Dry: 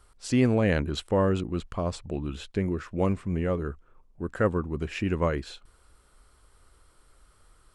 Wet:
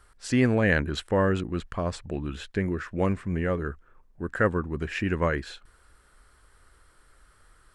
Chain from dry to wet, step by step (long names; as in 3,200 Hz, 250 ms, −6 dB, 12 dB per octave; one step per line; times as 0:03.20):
parametric band 1,700 Hz +9 dB 0.57 octaves